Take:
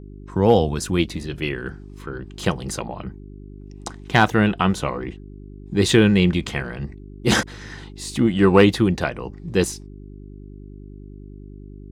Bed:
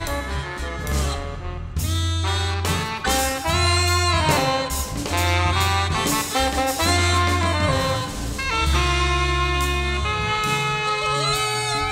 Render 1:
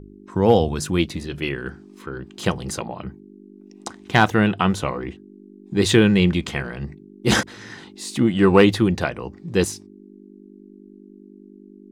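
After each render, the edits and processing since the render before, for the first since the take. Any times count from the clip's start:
hum removal 50 Hz, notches 3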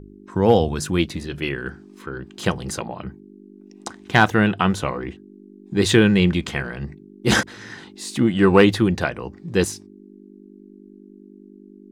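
parametric band 1,600 Hz +3 dB 0.35 octaves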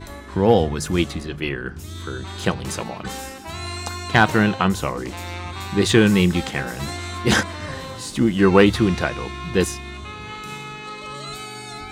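mix in bed −12 dB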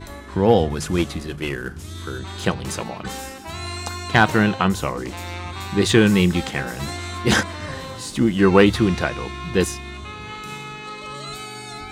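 0:00.70–0:02.19: variable-slope delta modulation 64 kbit/s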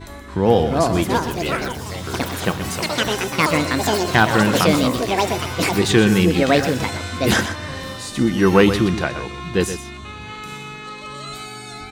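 delay with pitch and tempo change per echo 453 ms, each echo +6 semitones, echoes 3
on a send: single-tap delay 124 ms −10.5 dB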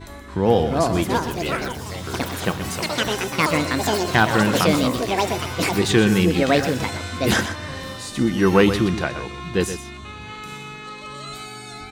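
level −2 dB

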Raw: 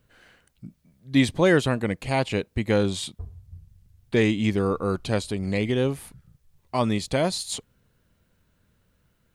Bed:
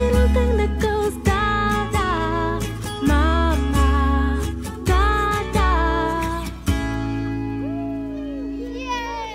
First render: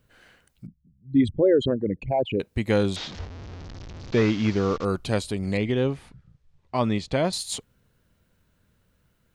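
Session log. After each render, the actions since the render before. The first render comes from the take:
0:00.66–0:02.40: spectral envelope exaggerated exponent 3
0:02.96–0:04.85: linear delta modulator 32 kbit/s, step −33 dBFS
0:05.57–0:07.33: high-frequency loss of the air 110 metres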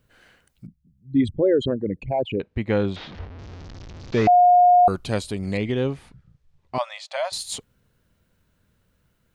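0:02.36–0:03.39: low-pass filter 2,800 Hz
0:04.27–0:04.88: beep over 715 Hz −10.5 dBFS
0:06.78–0:07.32: linear-phase brick-wall high-pass 540 Hz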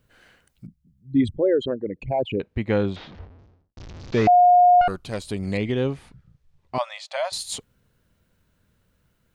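0:01.38–0:02.01: bass and treble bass −10 dB, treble −7 dB
0:02.74–0:03.77: fade out and dull
0:04.81–0:05.27: tube saturation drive 16 dB, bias 0.8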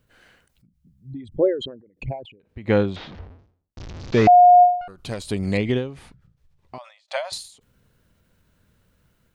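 automatic gain control gain up to 3.5 dB
every ending faded ahead of time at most 110 dB per second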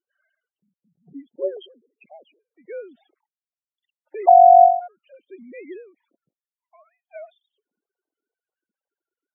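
three sine waves on the formant tracks
spectral peaks only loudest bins 16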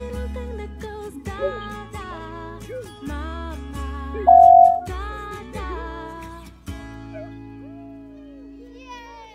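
mix in bed −13 dB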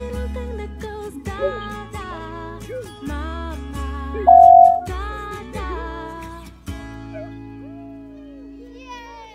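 level +2.5 dB
brickwall limiter −1 dBFS, peak gain reduction 1 dB

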